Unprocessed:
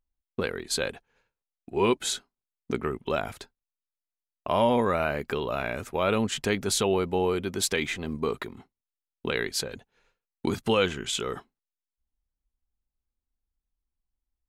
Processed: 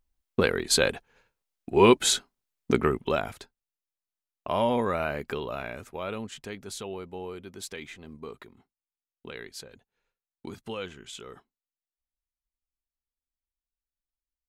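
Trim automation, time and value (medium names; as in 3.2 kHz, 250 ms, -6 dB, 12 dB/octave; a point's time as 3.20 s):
2.85 s +6 dB
3.37 s -2.5 dB
5.30 s -2.5 dB
6.46 s -12.5 dB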